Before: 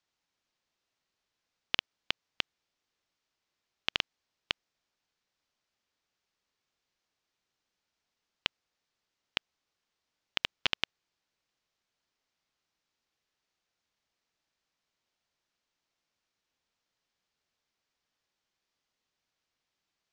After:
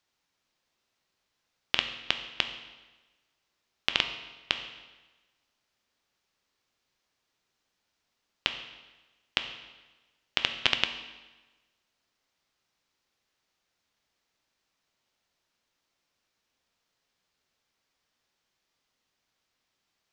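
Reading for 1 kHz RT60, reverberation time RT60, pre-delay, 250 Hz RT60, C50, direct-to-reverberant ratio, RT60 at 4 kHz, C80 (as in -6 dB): 1.2 s, 1.2 s, 7 ms, 1.2 s, 9.5 dB, 6.5 dB, 1.1 s, 11.0 dB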